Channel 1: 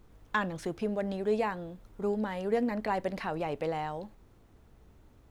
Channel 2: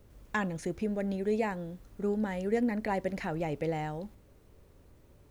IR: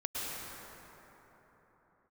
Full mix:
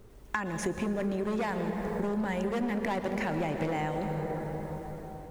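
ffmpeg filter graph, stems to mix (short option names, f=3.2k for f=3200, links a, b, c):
-filter_complex "[0:a]equalizer=f=400:w=5.5:g=14.5,acompressor=threshold=-27dB:ratio=6,volume=0.5dB[a];[1:a]dynaudnorm=f=240:g=5:m=9.5dB,asoftclip=type=hard:threshold=-19dB,volume=-1,volume=-1.5dB,asplit=2[b][c];[c]volume=-8dB[d];[2:a]atrim=start_sample=2205[e];[d][e]afir=irnorm=-1:irlink=0[f];[a][b][f]amix=inputs=3:normalize=0,equalizer=f=8.4k:w=3.9:g=2.5,acompressor=threshold=-28dB:ratio=6"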